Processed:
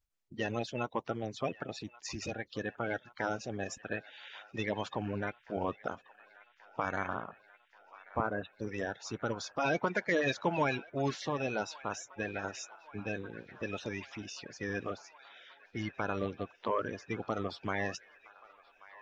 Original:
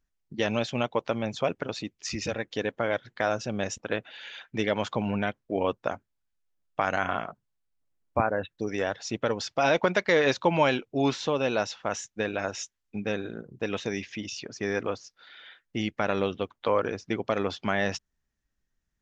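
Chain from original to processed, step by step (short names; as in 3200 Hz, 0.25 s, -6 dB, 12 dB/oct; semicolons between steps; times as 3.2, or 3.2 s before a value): bin magnitudes rounded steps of 30 dB; on a send: band-limited delay 1.132 s, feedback 75%, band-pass 1600 Hz, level -18.5 dB; on the sum: gain -7 dB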